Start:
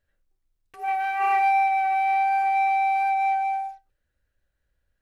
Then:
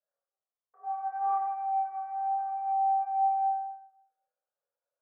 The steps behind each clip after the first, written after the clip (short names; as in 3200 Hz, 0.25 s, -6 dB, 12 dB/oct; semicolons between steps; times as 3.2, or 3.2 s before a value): elliptic band-pass 490–1300 Hz, stop band 50 dB; chorus voices 6, 0.4 Hz, delay 28 ms, depth 1.7 ms; reverb RT60 0.75 s, pre-delay 5 ms, DRR -4 dB; gain -7.5 dB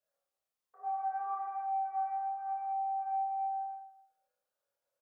compressor 10:1, threshold -34 dBFS, peak gain reduction 11.5 dB; doubler 30 ms -5 dB; gain +2.5 dB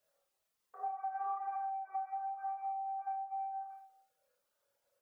reverb removal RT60 0.72 s; compressor, threshold -44 dBFS, peak gain reduction 12 dB; on a send: flutter echo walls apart 8.3 m, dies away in 0.34 s; on the sum: gain +8 dB